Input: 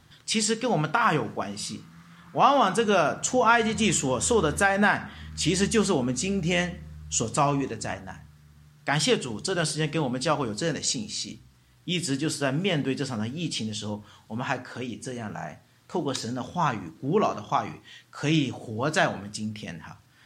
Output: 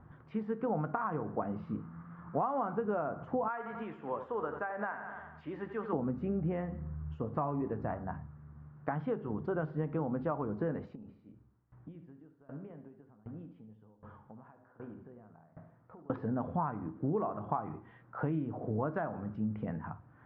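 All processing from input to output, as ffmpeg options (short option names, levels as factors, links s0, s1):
-filter_complex "[0:a]asettb=1/sr,asplit=3[s0][s1][s2];[s0]atrim=end=3.484[s3];[s1]atrim=start=3.48:end=5.93,asetpts=PTS-STARTPTS,afade=t=in:d=0.004:c=qsin,afade=t=out:st=2.446:d=0.004:c=qsin,highpass=f=1200:p=1,aecho=1:1:89|178|267|356|445|534:0.282|0.158|0.0884|0.0495|0.0277|0.0155,atrim=end_sample=108045[s4];[s2]atrim=start=5.926[s5];[s3][s4]acrossfade=d=0.004:c1=hsin:c2=qsin[s6];[s6][s5]acrossfade=d=0.004:c1=qsin:c2=hsin,asettb=1/sr,asplit=3[s7][s8][s9];[s7]atrim=end=10.954[s10];[s8]atrim=start=10.95:end=16.1,asetpts=PTS-STARTPTS,afade=t=in:d=0.004:c=qsin,afade=t=out:st=5.146:d=0.004:c=qsin,acompressor=threshold=0.00891:ratio=12:attack=3.2:release=140:knee=1:detection=peak,aecho=1:1:73|146|219|292|365|438|511:0.316|0.187|0.11|0.0649|0.0383|0.0226|0.0133,atrim=end_sample=227115,aeval=exprs='val(0)*pow(10,-20*if(lt(mod(1.3*n/s,1),2*abs(1.3)/1000),1-mod(1.3*n/s,1)/(2*abs(1.3)/1000),(mod(1.3*n/s,1)-2*abs(1.3)/1000)/(1-2*abs(1.3)/1000))/20)':c=same[s11];[s9]atrim=start=16.096[s12];[s10][s11]acrossfade=d=0.004:c1=hsin:c2=qsin[s13];[s13][s12]acrossfade=d=0.004:c1=qsin:c2=hsin,acompressor=threshold=0.0282:ratio=12,lowpass=f=1300:w=0.5412,lowpass=f=1300:w=1.3066,volume=1.26"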